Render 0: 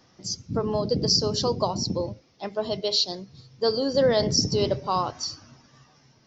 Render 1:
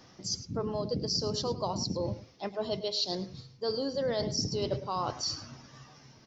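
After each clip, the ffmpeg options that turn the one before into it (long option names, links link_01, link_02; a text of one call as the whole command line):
ffmpeg -i in.wav -af "areverse,acompressor=threshold=-34dB:ratio=4,areverse,aecho=1:1:106:0.178,volume=3dB" out.wav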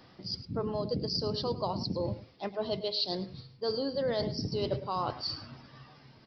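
ffmpeg -i in.wav -af "aresample=11025,aresample=44100" out.wav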